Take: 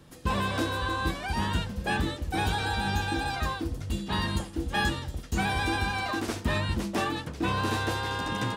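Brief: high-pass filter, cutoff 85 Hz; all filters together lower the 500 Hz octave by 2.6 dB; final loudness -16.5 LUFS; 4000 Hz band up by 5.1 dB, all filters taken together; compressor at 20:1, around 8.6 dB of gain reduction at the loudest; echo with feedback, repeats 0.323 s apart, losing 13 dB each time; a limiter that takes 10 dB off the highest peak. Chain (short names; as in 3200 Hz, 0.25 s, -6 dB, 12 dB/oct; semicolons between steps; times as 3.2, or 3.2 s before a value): HPF 85 Hz; bell 500 Hz -3.5 dB; bell 4000 Hz +6 dB; compressor 20:1, threshold -32 dBFS; limiter -31.5 dBFS; feedback echo 0.323 s, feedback 22%, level -13 dB; gain +23 dB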